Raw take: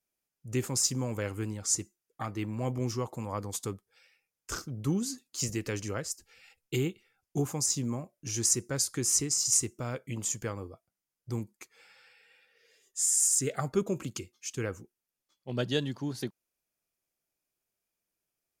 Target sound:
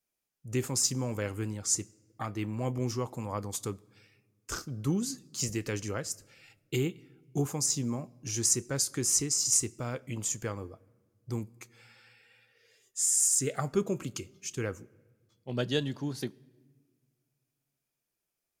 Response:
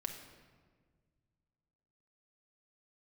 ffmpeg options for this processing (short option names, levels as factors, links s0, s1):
-filter_complex "[0:a]asplit=2[s0][s1];[1:a]atrim=start_sample=2205,adelay=29[s2];[s1][s2]afir=irnorm=-1:irlink=0,volume=0.119[s3];[s0][s3]amix=inputs=2:normalize=0"